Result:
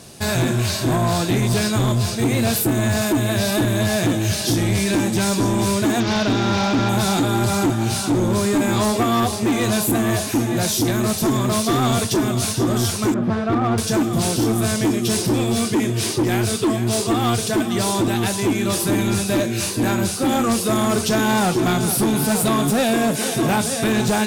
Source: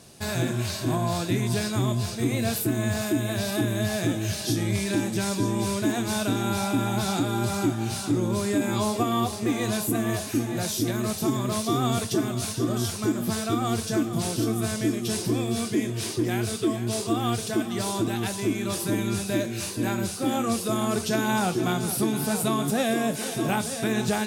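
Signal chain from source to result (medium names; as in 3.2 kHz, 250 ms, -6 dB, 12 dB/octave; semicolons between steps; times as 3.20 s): 6.00–6.89 s: one-bit delta coder 32 kbps, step -31 dBFS; 13.14–13.78 s: low-pass 1.7 kHz 12 dB/octave; overload inside the chain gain 23 dB; trim +8.5 dB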